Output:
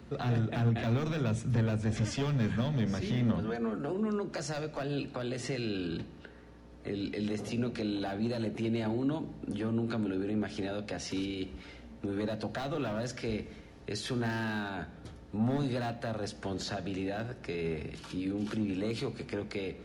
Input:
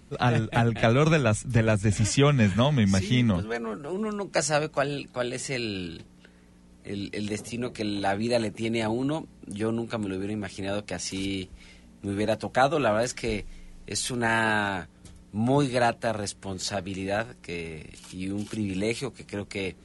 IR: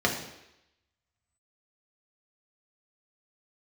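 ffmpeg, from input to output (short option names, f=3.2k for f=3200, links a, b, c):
-filter_complex "[0:a]highpass=f=58:w=0.5412,highpass=f=58:w=1.3066,acrossover=split=3300[a][b];[a]asoftclip=type=hard:threshold=-21.5dB[c];[b]highshelf=f=6k:g=-8[d];[c][d]amix=inputs=2:normalize=0,alimiter=level_in=4.5dB:limit=-24dB:level=0:latency=1:release=88,volume=-4.5dB,acrossover=split=290|3000[e][f][g];[f]acompressor=threshold=-41dB:ratio=6[h];[e][h][g]amix=inputs=3:normalize=0,equalizer=f=8.8k:t=o:w=1.3:g=-10.5,asplit=2[i][j];[1:a]atrim=start_sample=2205,highshelf=f=10k:g=10.5[k];[j][k]afir=irnorm=-1:irlink=0,volume=-20dB[l];[i][l]amix=inputs=2:normalize=0,volume=3dB"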